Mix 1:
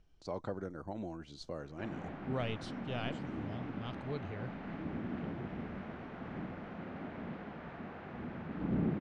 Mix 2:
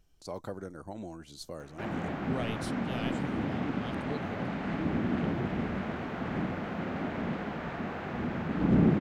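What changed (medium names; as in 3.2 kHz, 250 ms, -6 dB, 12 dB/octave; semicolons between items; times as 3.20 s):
background +9.5 dB; master: remove distance through air 130 m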